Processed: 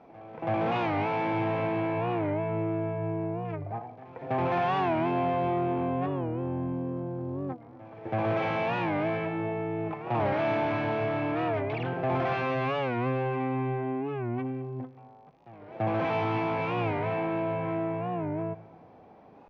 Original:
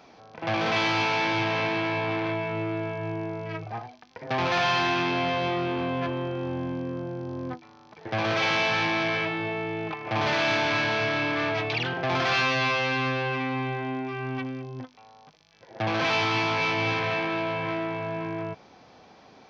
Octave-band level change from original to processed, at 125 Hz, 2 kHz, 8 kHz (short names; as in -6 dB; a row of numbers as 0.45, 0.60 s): +0.5 dB, -10.0 dB, n/a